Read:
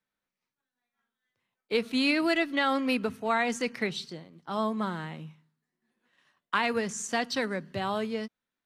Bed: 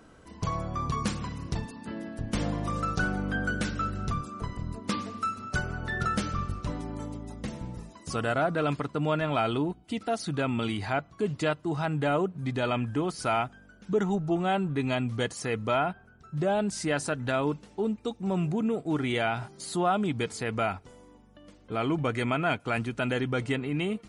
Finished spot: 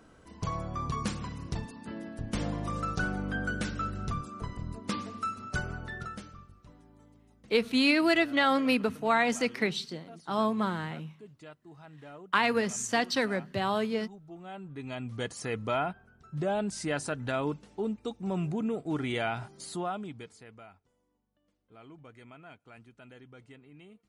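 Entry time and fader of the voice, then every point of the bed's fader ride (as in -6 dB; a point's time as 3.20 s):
5.80 s, +1.5 dB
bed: 5.72 s -3 dB
6.49 s -21.5 dB
14.20 s -21.5 dB
15.35 s -3.5 dB
19.62 s -3.5 dB
20.66 s -23.5 dB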